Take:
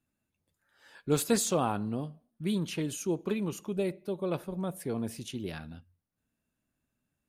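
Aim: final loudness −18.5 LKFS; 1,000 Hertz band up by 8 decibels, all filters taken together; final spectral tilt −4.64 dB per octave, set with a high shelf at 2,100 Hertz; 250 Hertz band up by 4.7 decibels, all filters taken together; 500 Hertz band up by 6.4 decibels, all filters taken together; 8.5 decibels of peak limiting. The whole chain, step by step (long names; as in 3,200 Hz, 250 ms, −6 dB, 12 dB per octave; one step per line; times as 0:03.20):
parametric band 250 Hz +4.5 dB
parametric band 500 Hz +4.5 dB
parametric band 1,000 Hz +7.5 dB
high-shelf EQ 2,100 Hz +5.5 dB
level +11 dB
brickwall limiter −5.5 dBFS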